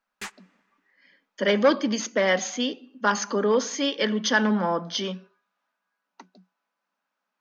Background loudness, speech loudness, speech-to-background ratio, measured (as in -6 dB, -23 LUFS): -39.5 LUFS, -24.5 LUFS, 15.0 dB